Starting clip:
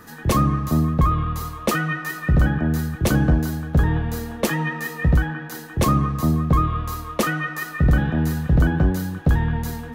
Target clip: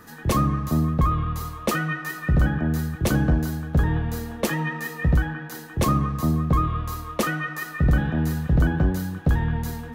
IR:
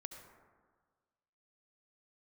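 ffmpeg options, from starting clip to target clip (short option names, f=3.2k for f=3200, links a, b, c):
-filter_complex "[0:a]asplit=2[a][b];[1:a]atrim=start_sample=2205,atrim=end_sample=6174[c];[b][c]afir=irnorm=-1:irlink=0,volume=-7dB[d];[a][d]amix=inputs=2:normalize=0,volume=-4.5dB"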